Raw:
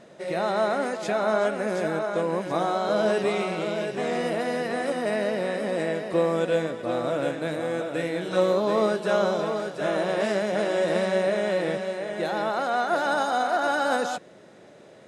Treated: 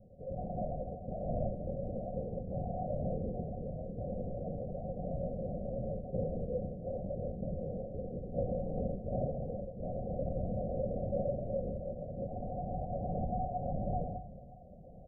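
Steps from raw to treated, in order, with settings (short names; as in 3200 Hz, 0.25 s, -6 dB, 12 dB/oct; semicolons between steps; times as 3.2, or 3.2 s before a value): CVSD 32 kbps; in parallel at -1 dB: compressor, threshold -34 dBFS, peak gain reduction 15.5 dB; on the sum: tilt -4 dB/oct; resonator 150 Hz, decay 0.55 s, harmonics all, mix 60%; feedback echo 1.072 s, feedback 56%, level -21 dB; on a send at -15.5 dB: reverb RT60 1.8 s, pre-delay 12 ms; on the sum: LPC vocoder at 8 kHz whisper; rippled Chebyshev low-pass 760 Hz, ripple 9 dB; bell 320 Hz -7 dB 1 oct; gain -5.5 dB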